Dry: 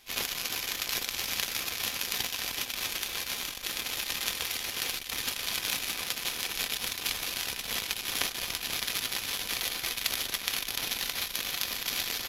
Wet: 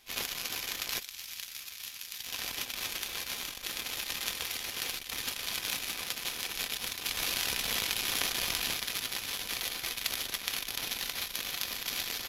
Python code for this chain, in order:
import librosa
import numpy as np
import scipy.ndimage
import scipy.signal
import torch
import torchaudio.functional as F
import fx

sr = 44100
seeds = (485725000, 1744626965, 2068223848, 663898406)

y = fx.tone_stack(x, sr, knobs='5-5-5', at=(0.99, 2.26), fade=0.02)
y = fx.env_flatten(y, sr, amount_pct=70, at=(7.17, 8.73))
y = y * librosa.db_to_amplitude(-3.0)